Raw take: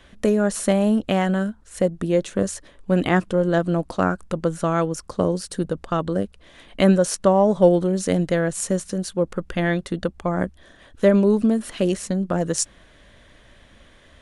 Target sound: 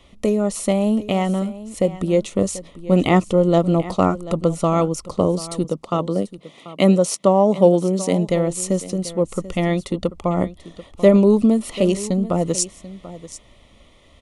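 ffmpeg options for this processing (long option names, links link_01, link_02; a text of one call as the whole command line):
ffmpeg -i in.wav -filter_complex "[0:a]asettb=1/sr,asplit=3[link_01][link_02][link_03];[link_01]atrim=end=5.644[link_04];[link_02]atrim=start=5.64:end=8.28,asetpts=PTS-STARTPTS,afade=type=in:duration=0.004:curve=qsin,afade=type=out:start_time=2.636:duration=0.004:curve=qsin,highpass=frequency=130:width=0.5412,highpass=frequency=130:width=1.3066[link_05];[link_03]atrim=start=8.276[link_06];[link_04][link_05]acrossfade=duration=0.004:curve1=hsin:curve2=qsin[link_07];[link_07][link_06]acrossfade=duration=0.004:curve1=qsin:curve2=hsin,dynaudnorm=framelen=520:gausssize=9:maxgain=11.5dB,asuperstop=centerf=1600:order=4:qfactor=2.7,aecho=1:1:738:0.158" out.wav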